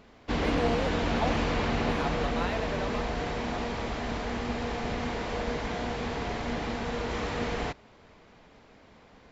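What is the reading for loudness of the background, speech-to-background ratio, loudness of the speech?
-31.0 LUFS, -5.0 dB, -36.0 LUFS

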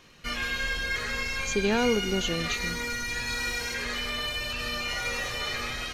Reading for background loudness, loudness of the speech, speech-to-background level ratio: -30.0 LUFS, -29.0 LUFS, 1.0 dB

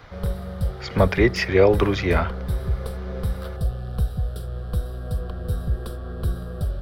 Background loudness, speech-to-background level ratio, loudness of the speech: -29.0 LUFS, 8.5 dB, -20.5 LUFS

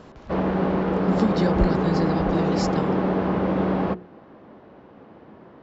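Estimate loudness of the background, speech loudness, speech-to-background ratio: -23.5 LUFS, -27.5 LUFS, -4.0 dB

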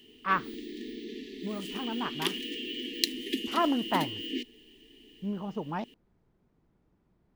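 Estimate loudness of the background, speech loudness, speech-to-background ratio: -35.0 LUFS, -33.5 LUFS, 1.5 dB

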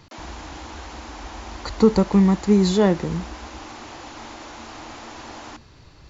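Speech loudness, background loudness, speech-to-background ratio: -19.0 LUFS, -38.5 LUFS, 19.5 dB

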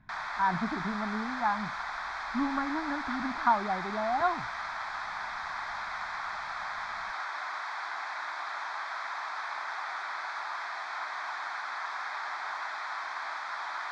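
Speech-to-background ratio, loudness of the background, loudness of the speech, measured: 3.5 dB, -36.0 LUFS, -32.5 LUFS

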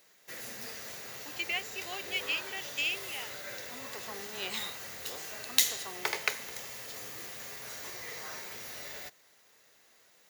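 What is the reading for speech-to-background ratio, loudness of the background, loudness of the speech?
1.5 dB, -36.5 LUFS, -35.0 LUFS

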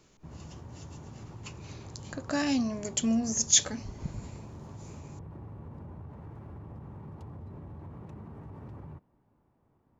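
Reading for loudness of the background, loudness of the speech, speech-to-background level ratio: -46.0 LUFS, -27.5 LUFS, 18.5 dB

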